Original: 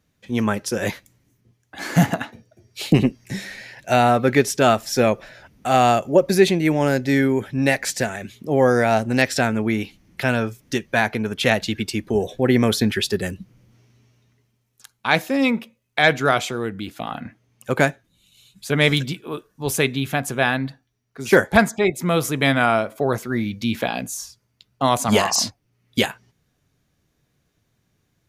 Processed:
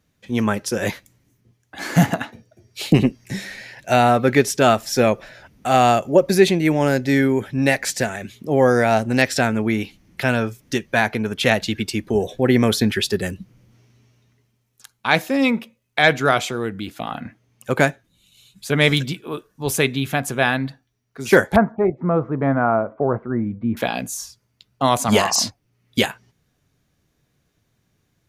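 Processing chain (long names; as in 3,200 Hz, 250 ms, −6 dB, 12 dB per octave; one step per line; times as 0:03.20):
0:21.56–0:23.77: low-pass filter 1,300 Hz 24 dB per octave
level +1 dB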